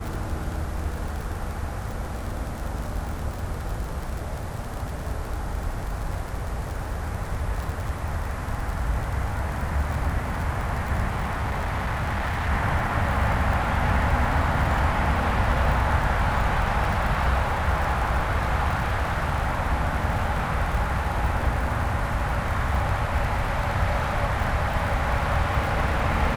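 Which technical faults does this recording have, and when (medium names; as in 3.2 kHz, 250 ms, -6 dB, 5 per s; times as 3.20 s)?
crackle 49 per s -29 dBFS
11.09–12.50 s: clipped -22.5 dBFS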